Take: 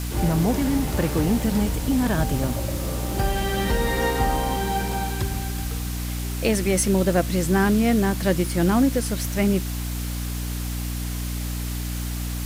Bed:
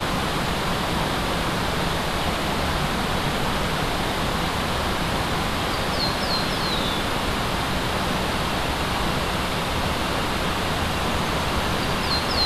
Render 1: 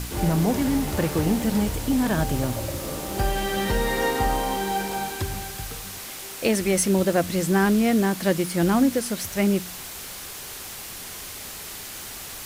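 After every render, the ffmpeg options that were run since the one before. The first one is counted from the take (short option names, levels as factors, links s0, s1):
-af "bandreject=f=60:t=h:w=4,bandreject=f=120:t=h:w=4,bandreject=f=180:t=h:w=4,bandreject=f=240:t=h:w=4,bandreject=f=300:t=h:w=4"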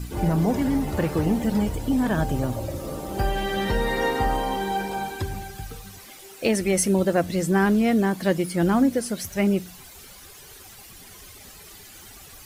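-af "afftdn=nr=12:nf=-37"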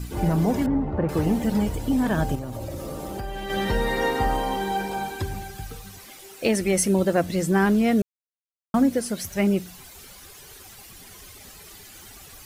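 -filter_complex "[0:a]asettb=1/sr,asplit=3[s0][s1][s2];[s0]atrim=end=0.664[s3];[s1]atrim=start=0.66:end=1.09,asetpts=PTS-STARTPTS,afade=t=in:d=0.004:c=qsin,afade=t=out:st=0.426:d=0.004:c=qsin,lowpass=1200[s4];[s2]atrim=start=1.086[s5];[s3][s4]acrossfade=d=0.004:c1=hsin:c2=qsin[s6];[s6][s5]acrossfade=d=0.004:c1=qsin:c2=hsin,asettb=1/sr,asplit=3[s7][s8][s9];[s7]atrim=end=2.354[s10];[s8]atrim=start=2.35:end=3.5,asetpts=PTS-STARTPTS,afade=t=in:d=0.004:c=qsin,afade=t=out:st=1.146:d=0.004:c=qsin,acompressor=threshold=0.0398:ratio=6:attack=3.2:release=140:knee=1:detection=peak[s11];[s9]atrim=start=3.496[s12];[s10][s11]acrossfade=d=0.004:c1=hsin:c2=qsin[s13];[s13][s12]acrossfade=d=0.004:c1=qsin:c2=hsin,asplit=3[s14][s15][s16];[s14]atrim=end=8.02,asetpts=PTS-STARTPTS,afade=t=out:st=8.016:d=0.004:c=hsin[s17];[s15]atrim=start=8.02:end=8.74,asetpts=PTS-STARTPTS,volume=0[s18];[s16]atrim=start=8.74,asetpts=PTS-STARTPTS,afade=t=in:d=0.004:c=hsin[s19];[s17][s18][s19]concat=n=3:v=0:a=1"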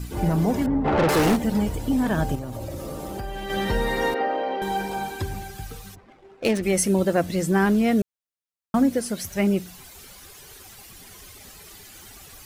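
-filter_complex "[0:a]asplit=3[s0][s1][s2];[s0]afade=t=out:st=0.84:d=0.02[s3];[s1]asplit=2[s4][s5];[s5]highpass=f=720:p=1,volume=22.4,asoftclip=type=tanh:threshold=0.251[s6];[s4][s6]amix=inputs=2:normalize=0,lowpass=f=7800:p=1,volume=0.501,afade=t=in:st=0.84:d=0.02,afade=t=out:st=1.35:d=0.02[s7];[s2]afade=t=in:st=1.35:d=0.02[s8];[s3][s7][s8]amix=inputs=3:normalize=0,asettb=1/sr,asplit=3[s9][s10][s11];[s9]atrim=end=4.144[s12];[s10]atrim=start=4.14:end=4.62,asetpts=PTS-STARTPTS,afade=t=in:d=0.004:c=qsin,afade=t=out:st=0.476:d=0.004:c=qsin,highpass=f=280:w=0.5412,highpass=f=280:w=1.3066,equalizer=f=590:t=q:w=4:g=8,equalizer=f=1000:t=q:w=4:g=-9,equalizer=f=3500:t=q:w=4:g=-7,lowpass=f=3700:w=0.5412,lowpass=f=3700:w=1.3066[s13];[s11]atrim=start=4.616[s14];[s12][s13]acrossfade=d=0.004:c1=hsin:c2=qsin[s15];[s15][s14]acrossfade=d=0.004:c1=qsin:c2=hsin,asplit=3[s16][s17][s18];[s16]afade=t=out:st=5.94:d=0.02[s19];[s17]adynamicsmooth=sensitivity=6:basefreq=790,afade=t=in:st=5.94:d=0.02,afade=t=out:st=6.62:d=0.02[s20];[s18]afade=t=in:st=6.62:d=0.02[s21];[s19][s20][s21]amix=inputs=3:normalize=0"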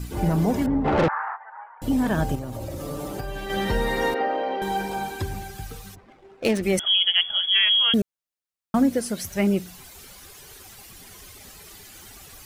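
-filter_complex "[0:a]asettb=1/sr,asplit=3[s0][s1][s2];[s0]atrim=end=1.084[s3];[s1]atrim=start=1.08:end=1.82,asetpts=PTS-STARTPTS,afade=t=in:d=0.004:c=qsin,afade=t=out:st=0.736:d=0.004:c=qsin,asuperpass=centerf=1200:order=8:qfactor=1.3[s4];[s2]atrim=start=1.816[s5];[s3][s4]acrossfade=d=0.004:c1=hsin:c2=qsin[s6];[s6][s5]acrossfade=d=0.004:c1=qsin:c2=hsin,asettb=1/sr,asplit=3[s7][s8][s9];[s7]atrim=end=2.804[s10];[s8]atrim=start=2.8:end=3.47,asetpts=PTS-STARTPTS,afade=t=in:d=0.004:c=qsin,afade=t=out:st=0.666:d=0.004:c=qsin,aecho=1:1:6.9:0.65,atrim=end_sample=29547[s11];[s9]atrim=start=3.466[s12];[s10][s11]acrossfade=d=0.004:c1=hsin:c2=qsin[s13];[s13][s12]acrossfade=d=0.004:c1=qsin:c2=hsin,asettb=1/sr,asplit=3[s14][s15][s16];[s14]atrim=end=6.794[s17];[s15]atrim=start=6.79:end=7.94,asetpts=PTS-STARTPTS,afade=t=in:d=0.004:c=qsin,afade=t=out:st=1.146:d=0.004:c=qsin,lowpass=f=3000:t=q:w=0.5098,lowpass=f=3000:t=q:w=0.6013,lowpass=f=3000:t=q:w=0.9,lowpass=f=3000:t=q:w=2.563,afreqshift=-3500[s18];[s16]atrim=start=7.936[s19];[s17][s18]acrossfade=d=0.004:c1=hsin:c2=qsin[s20];[s20][s19]acrossfade=d=0.004:c1=qsin:c2=hsin"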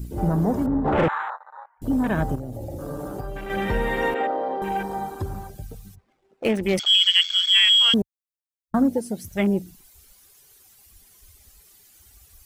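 -af "afwtdn=0.0224,highshelf=f=5400:g=12"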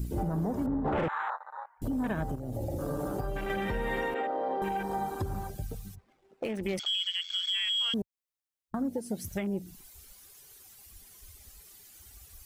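-af "acompressor=threshold=0.0355:ratio=2.5,alimiter=limit=0.075:level=0:latency=1:release=264"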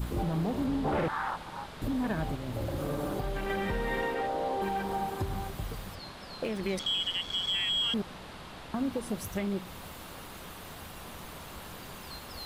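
-filter_complex "[1:a]volume=0.0841[s0];[0:a][s0]amix=inputs=2:normalize=0"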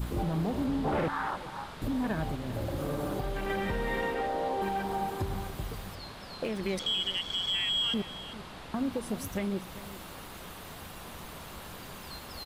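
-af "aecho=1:1:394:0.168"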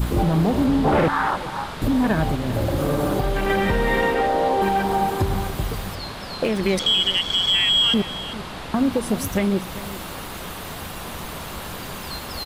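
-af "volume=3.76"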